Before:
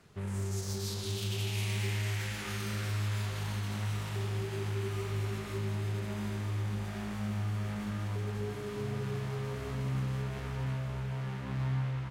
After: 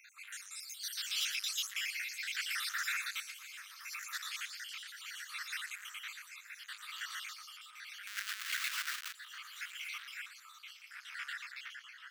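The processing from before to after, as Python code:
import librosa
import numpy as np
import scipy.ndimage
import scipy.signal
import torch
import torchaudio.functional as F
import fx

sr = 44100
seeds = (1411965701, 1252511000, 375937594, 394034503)

y = fx.spec_dropout(x, sr, seeds[0], share_pct=70)
y = fx.peak_eq(y, sr, hz=4000.0, db=fx.line((3.3, -10.0), (3.9, -4.0)), octaves=1.8, at=(3.3, 3.9), fade=0.02)
y = fx.echo_feedback(y, sr, ms=118, feedback_pct=47, wet_db=-10.0)
y = y * (1.0 - 0.62 / 2.0 + 0.62 / 2.0 * np.cos(2.0 * np.pi * 0.71 * (np.arange(len(y)) / sr)))
y = fx.schmitt(y, sr, flips_db=-56.0, at=(8.07, 9.14))
y = fx.peak_eq(y, sr, hz=10000.0, db=-4.0, octaves=0.48)
y = y + 10.0 ** (-20.0 / 20.0) * np.pad(y, (int(1054 * sr / 1000.0), 0))[:len(y)]
y = 10.0 ** (-40.0 / 20.0) * np.tanh(y / 10.0 ** (-40.0 / 20.0))
y = scipy.signal.sosfilt(scipy.signal.butter(8, 1400.0, 'highpass', fs=sr, output='sos'), y)
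y = y * librosa.db_to_amplitude(13.5)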